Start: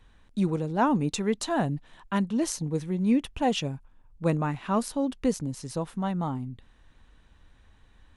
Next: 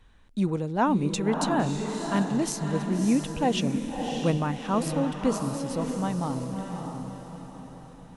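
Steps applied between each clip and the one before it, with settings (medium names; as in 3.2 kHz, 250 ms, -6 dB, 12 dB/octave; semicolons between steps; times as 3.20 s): echo that smears into a reverb 617 ms, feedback 46%, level -5 dB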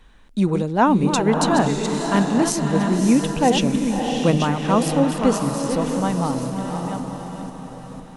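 chunks repeated in reverse 500 ms, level -7.5 dB; peaking EQ 90 Hz -14.5 dB 0.58 oct; trim +7.5 dB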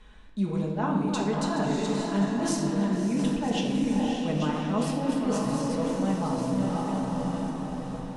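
low-pass 9.3 kHz 12 dB/octave; reverse; compression 6:1, threshold -26 dBFS, peak gain reduction 14 dB; reverse; reverberation RT60 1.5 s, pre-delay 5 ms, DRR -1.5 dB; trim -3.5 dB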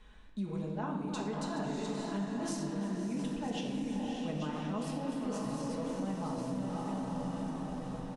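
compression 3:1, threshold -29 dBFS, peak gain reduction 7 dB; delay 349 ms -16 dB; trim -5 dB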